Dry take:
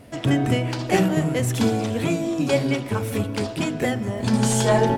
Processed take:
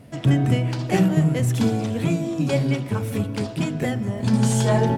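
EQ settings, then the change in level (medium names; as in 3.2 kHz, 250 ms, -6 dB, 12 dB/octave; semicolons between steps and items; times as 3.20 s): peaking EQ 150 Hz +9.5 dB 0.97 oct; -3.5 dB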